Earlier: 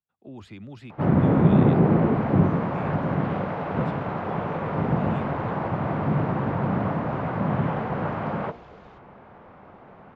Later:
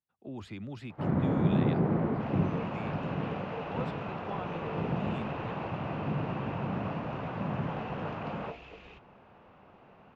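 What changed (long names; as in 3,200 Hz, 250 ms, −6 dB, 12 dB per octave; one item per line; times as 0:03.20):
first sound −9.0 dB
second sound: add parametric band 2,600 Hz +14.5 dB 0.44 octaves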